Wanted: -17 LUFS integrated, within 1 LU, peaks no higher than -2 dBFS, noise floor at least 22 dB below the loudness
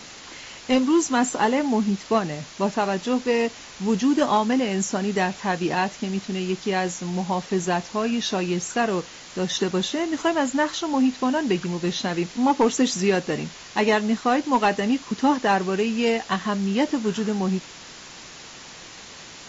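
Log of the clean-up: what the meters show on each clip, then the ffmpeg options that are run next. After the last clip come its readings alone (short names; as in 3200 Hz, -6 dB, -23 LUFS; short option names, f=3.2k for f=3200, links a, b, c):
noise floor -42 dBFS; noise floor target -46 dBFS; loudness -23.5 LUFS; peak -10.0 dBFS; loudness target -17.0 LUFS
-> -af "afftdn=nr=6:nf=-42"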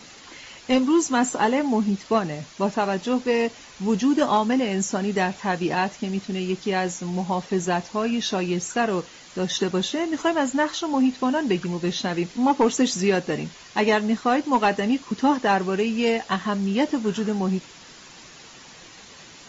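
noise floor -46 dBFS; loudness -23.5 LUFS; peak -10.0 dBFS; loudness target -17.0 LUFS
-> -af "volume=6.5dB"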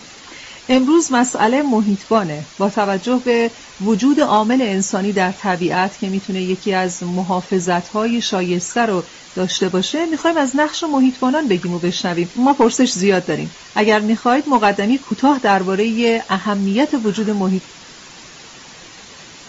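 loudness -17.0 LUFS; peak -3.5 dBFS; noise floor -39 dBFS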